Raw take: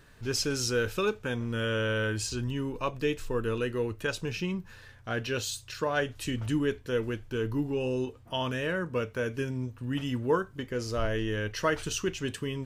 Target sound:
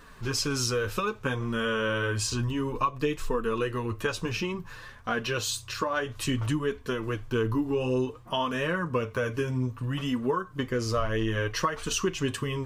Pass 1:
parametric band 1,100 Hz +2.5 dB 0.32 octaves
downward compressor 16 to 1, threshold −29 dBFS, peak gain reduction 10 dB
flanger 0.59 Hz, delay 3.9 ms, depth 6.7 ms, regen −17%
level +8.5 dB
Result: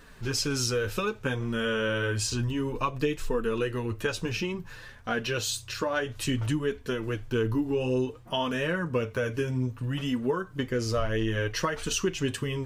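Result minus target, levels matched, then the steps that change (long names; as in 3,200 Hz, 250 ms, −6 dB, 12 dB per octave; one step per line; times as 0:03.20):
1,000 Hz band −3.0 dB
change: parametric band 1,100 Hz +11.5 dB 0.32 octaves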